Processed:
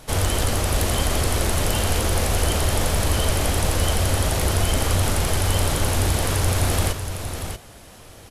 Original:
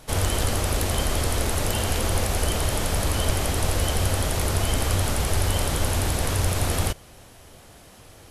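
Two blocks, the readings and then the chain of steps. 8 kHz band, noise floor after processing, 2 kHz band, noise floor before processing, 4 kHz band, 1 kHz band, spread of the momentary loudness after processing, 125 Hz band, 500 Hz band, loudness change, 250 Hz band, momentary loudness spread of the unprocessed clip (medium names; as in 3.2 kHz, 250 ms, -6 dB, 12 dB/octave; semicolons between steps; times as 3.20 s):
+2.5 dB, -44 dBFS, +3.0 dB, -49 dBFS, +3.0 dB, +2.5 dB, 3 LU, +3.0 dB, +3.0 dB, +2.5 dB, +2.5 dB, 1 LU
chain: in parallel at -7 dB: saturation -22.5 dBFS, distortion -11 dB; on the sum: delay 636 ms -8 dB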